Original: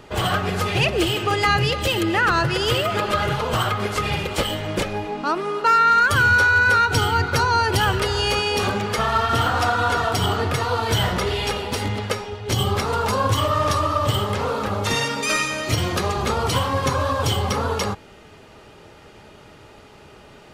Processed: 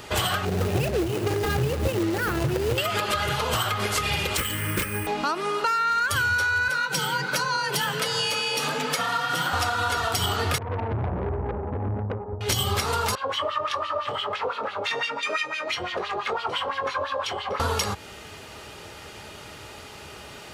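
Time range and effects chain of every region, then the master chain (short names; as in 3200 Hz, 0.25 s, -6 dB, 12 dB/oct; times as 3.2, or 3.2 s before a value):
0.45–2.78 median filter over 41 samples + bell 350 Hz +4 dB 2.3 oct
4.37–5.07 fixed phaser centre 1700 Hz, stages 4 + careless resampling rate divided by 4×, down none, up hold
6.68–9.53 HPF 99 Hz + flange 1.3 Hz, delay 1.5 ms, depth 9.8 ms, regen -50% + frequency shift +46 Hz
10.58–12.41 steep low-pass 820 Hz + comb 0.8 ms, depth 38% + tube stage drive 26 dB, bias 0.5
13.15–17.6 high shelf 3700 Hz -9.5 dB + LFO band-pass sine 5.9 Hz 470–3400 Hz + doubler 22 ms -8.5 dB
whole clip: tilt +2.5 dB/oct; compressor, threshold -27 dBFS; bell 71 Hz +9.5 dB 1.6 oct; gain +4 dB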